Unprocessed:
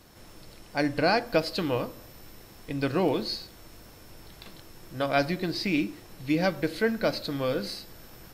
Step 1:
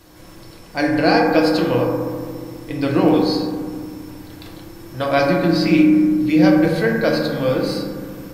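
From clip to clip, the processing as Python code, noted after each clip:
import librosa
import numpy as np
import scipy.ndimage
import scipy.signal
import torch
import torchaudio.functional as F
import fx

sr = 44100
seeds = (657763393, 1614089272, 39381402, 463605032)

y = fx.rev_fdn(x, sr, rt60_s=1.9, lf_ratio=1.55, hf_ratio=0.25, size_ms=18.0, drr_db=-1.5)
y = y * librosa.db_to_amplitude(4.5)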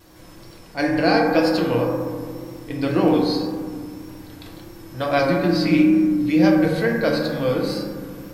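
y = fx.wow_flutter(x, sr, seeds[0], rate_hz=2.1, depth_cents=47.0)
y = fx.attack_slew(y, sr, db_per_s=370.0)
y = y * librosa.db_to_amplitude(-2.5)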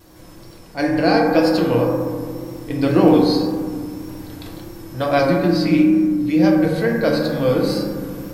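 y = fx.rider(x, sr, range_db=4, speed_s=2.0)
y = fx.peak_eq(y, sr, hz=2400.0, db=-3.5, octaves=2.5)
y = y * librosa.db_to_amplitude(2.5)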